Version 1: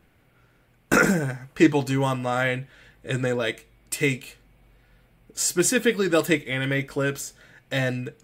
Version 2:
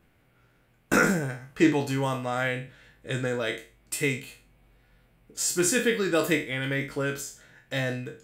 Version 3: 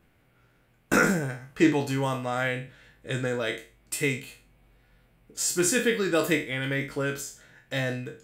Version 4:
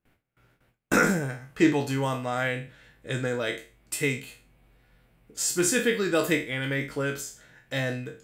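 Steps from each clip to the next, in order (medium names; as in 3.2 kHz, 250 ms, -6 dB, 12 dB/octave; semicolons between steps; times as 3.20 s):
spectral sustain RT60 0.36 s; trim -4.5 dB
no audible change
gate with hold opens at -53 dBFS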